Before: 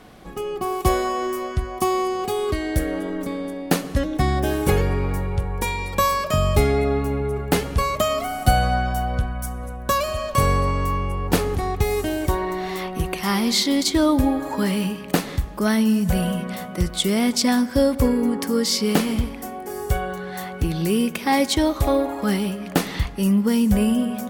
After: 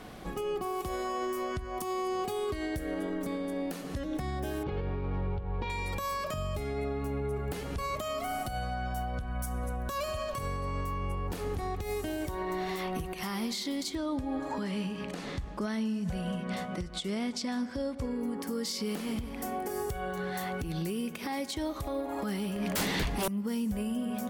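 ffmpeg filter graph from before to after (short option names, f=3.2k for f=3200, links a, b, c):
-filter_complex "[0:a]asettb=1/sr,asplit=3[a][b][c];[a]atrim=end=4.634[d];[b]atrim=start=4.63:end=5.7,asetpts=PTS-STARTPTS,afade=t=in:d=0.004:c=qsin,afade=t=out:st=1.066:d=0.004:c=qsin,adynamicsmooth=sensitivity=7:basefreq=1.6k,lowpass=f=3.9k:w=0.5412,lowpass=f=3.9k:w=1.3066,equalizer=f=1.9k:w=2.1:g=-5[e];[c]atrim=start=5.696[f];[d][e]acrossfade=d=0.004:c1=hsin:c2=qsin[g];[g][f]acrossfade=d=0.004:c1=qsin:c2=hsin,asettb=1/sr,asplit=3[h][i][j];[h]atrim=end=13.954[k];[i]atrim=start=13.95:end=18.21,asetpts=PTS-STARTPTS,afade=t=in:d=0.004:c=qsin,afade=t=out:st=4.256:d=0.004:c=qsin,lowpass=7k,tremolo=f=4.6:d=0.35[l];[j]atrim=start=18.206[m];[k][l]acrossfade=d=0.004:c1=hsin:c2=qsin[n];[n][m]acrossfade=d=0.004:c1=qsin:c2=hsin,asettb=1/sr,asplit=3[o][p][q];[o]atrim=end=22.564[r];[p]atrim=start=22.56:end=23.28,asetpts=PTS-STARTPTS,afade=t=in:d=0.004:c=qsin,afade=t=out:st=0.716:d=0.004:c=qsin,bandreject=f=1.3k:w=8.8,aeval=exprs='0.531*sin(PI/2*7.94*val(0)/0.531)':c=same[s];[q]atrim=start=23.276[t];[r][s]acrossfade=d=0.004:c1=hsin:c2=qsin[u];[u][t]acrossfade=d=0.004:c1=qsin:c2=hsin,acompressor=threshold=-29dB:ratio=6,alimiter=level_in=1.5dB:limit=-24dB:level=0:latency=1:release=97,volume=-1.5dB"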